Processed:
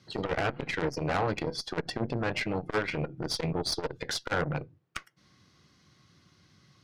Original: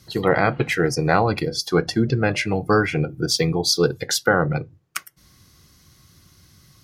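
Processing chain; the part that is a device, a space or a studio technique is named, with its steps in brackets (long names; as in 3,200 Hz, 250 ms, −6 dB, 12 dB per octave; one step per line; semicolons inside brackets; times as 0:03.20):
valve radio (band-pass filter 130–4,100 Hz; tube saturation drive 19 dB, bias 0.7; saturating transformer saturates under 390 Hz)
level −1 dB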